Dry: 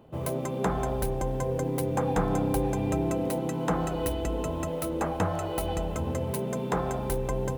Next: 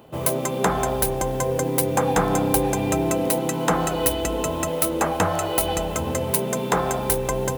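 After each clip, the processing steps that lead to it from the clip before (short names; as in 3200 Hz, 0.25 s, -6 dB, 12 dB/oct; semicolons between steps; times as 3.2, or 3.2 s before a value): tilt +2 dB/oct; gain +8.5 dB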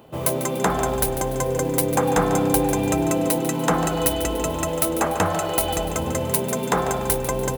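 feedback echo 0.146 s, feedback 45%, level -12 dB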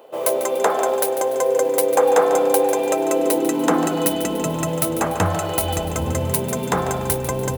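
high-pass sweep 490 Hz -> 83 Hz, 2.95–5.44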